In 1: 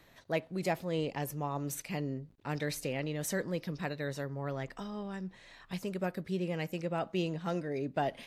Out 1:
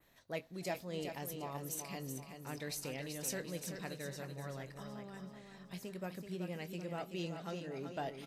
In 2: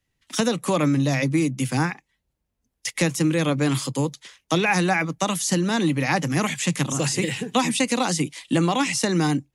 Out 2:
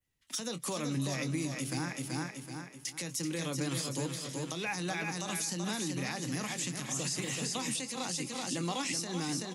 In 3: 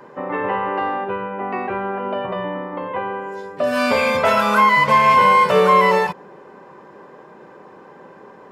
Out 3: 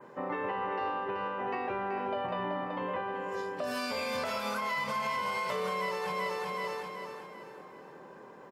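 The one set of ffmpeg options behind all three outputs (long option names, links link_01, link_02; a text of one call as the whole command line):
ffmpeg -i in.wav -filter_complex "[0:a]asplit=2[link_01][link_02];[link_02]adelay=23,volume=-13dB[link_03];[link_01][link_03]amix=inputs=2:normalize=0,asplit=2[link_04][link_05];[link_05]aecho=0:1:380|760|1140|1520|1900:0.447|0.205|0.0945|0.0435|0.02[link_06];[link_04][link_06]amix=inputs=2:normalize=0,acompressor=threshold=-17dB:ratio=6,highshelf=frequency=6900:gain=9,asplit=2[link_07][link_08];[link_08]asplit=3[link_09][link_10][link_11];[link_09]adelay=290,afreqshift=39,volume=-24dB[link_12];[link_10]adelay=580,afreqshift=78,volume=-29.4dB[link_13];[link_11]adelay=870,afreqshift=117,volume=-34.7dB[link_14];[link_12][link_13][link_14]amix=inputs=3:normalize=0[link_15];[link_07][link_15]amix=inputs=2:normalize=0,adynamicequalizer=threshold=0.00447:dfrequency=5000:dqfactor=1.2:tfrequency=5000:tqfactor=1.2:attack=5:release=100:ratio=0.375:range=3:mode=boostabove:tftype=bell,alimiter=limit=-15.5dB:level=0:latency=1:release=237,volume=-9dB" out.wav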